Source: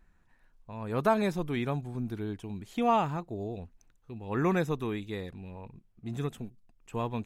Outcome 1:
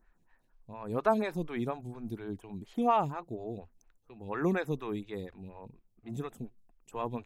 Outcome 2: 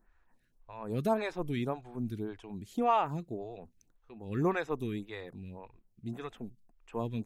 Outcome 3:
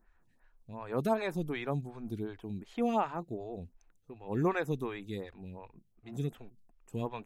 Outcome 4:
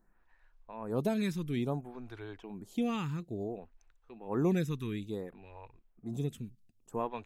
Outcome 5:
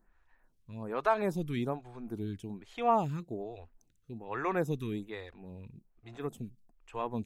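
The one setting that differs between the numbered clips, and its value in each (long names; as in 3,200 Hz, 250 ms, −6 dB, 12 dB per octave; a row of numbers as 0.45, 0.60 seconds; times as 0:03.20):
phaser with staggered stages, speed: 4.2, 1.8, 2.7, 0.58, 1.2 Hertz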